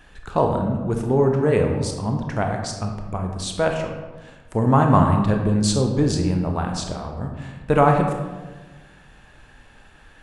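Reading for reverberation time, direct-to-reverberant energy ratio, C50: 1.3 s, 2.5 dB, 4.5 dB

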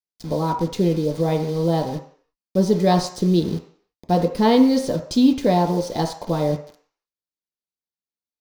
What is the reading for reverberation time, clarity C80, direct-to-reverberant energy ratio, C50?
0.55 s, 13.0 dB, 2.0 dB, 9.5 dB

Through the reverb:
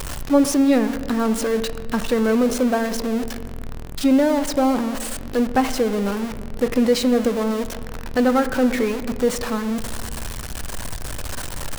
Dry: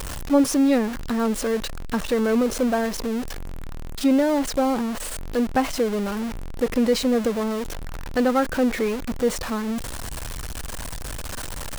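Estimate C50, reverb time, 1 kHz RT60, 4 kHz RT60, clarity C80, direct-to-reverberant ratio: 13.0 dB, 1.7 s, 1.5 s, 1.0 s, 14.5 dB, 11.0 dB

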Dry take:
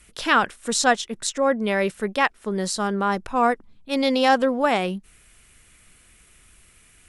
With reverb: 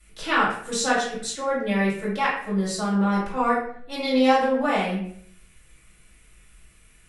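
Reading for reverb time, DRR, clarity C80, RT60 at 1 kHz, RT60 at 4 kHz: 0.60 s, -8.5 dB, 7.0 dB, 0.55 s, 0.45 s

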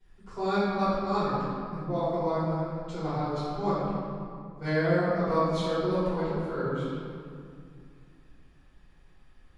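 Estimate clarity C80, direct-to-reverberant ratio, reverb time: -1.0 dB, -14.0 dB, 2.3 s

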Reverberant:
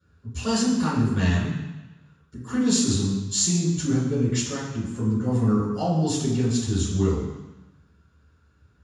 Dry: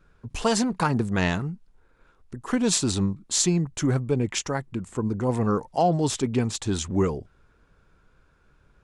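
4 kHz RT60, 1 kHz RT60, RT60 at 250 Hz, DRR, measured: 1.1 s, 1.1 s, 1.0 s, -13.5 dB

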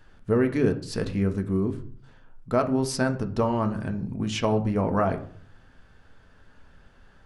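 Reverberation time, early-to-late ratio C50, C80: 0.50 s, 14.0 dB, 17.5 dB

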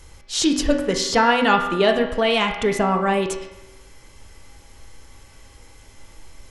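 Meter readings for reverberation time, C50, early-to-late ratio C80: 1.0 s, 6.5 dB, 8.5 dB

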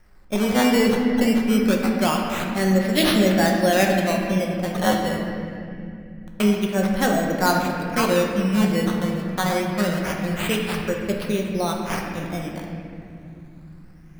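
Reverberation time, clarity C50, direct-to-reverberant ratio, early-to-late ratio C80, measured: 2.6 s, 2.0 dB, 0.0 dB, 3.5 dB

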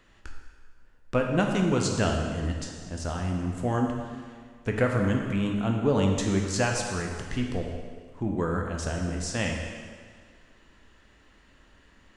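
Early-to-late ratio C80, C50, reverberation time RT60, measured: 4.0 dB, 3.0 dB, 1.8 s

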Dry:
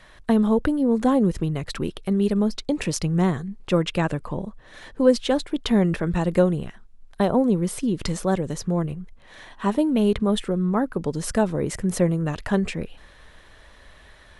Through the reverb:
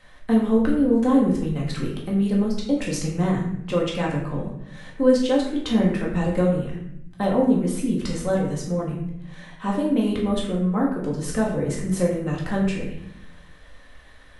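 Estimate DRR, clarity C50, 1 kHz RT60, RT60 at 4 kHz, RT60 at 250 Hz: -3.5 dB, 4.0 dB, 0.65 s, 0.55 s, 1.2 s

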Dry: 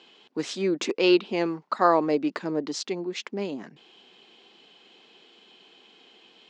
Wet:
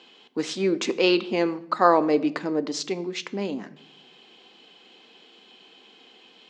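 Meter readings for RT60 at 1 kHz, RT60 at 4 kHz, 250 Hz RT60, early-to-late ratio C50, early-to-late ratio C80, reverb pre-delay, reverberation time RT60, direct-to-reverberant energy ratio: 0.65 s, 0.55 s, 1.0 s, 18.0 dB, 20.0 dB, 4 ms, 0.70 s, 11.5 dB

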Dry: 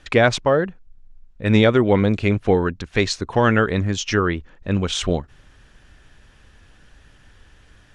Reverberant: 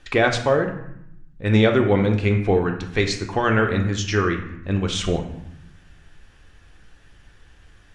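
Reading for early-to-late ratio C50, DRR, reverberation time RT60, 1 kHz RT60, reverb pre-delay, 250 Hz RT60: 8.0 dB, 3.0 dB, 0.75 s, 0.80 s, 3 ms, 1.2 s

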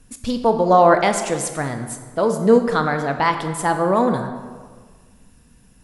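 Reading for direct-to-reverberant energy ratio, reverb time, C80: 6.5 dB, 1.6 s, 9.5 dB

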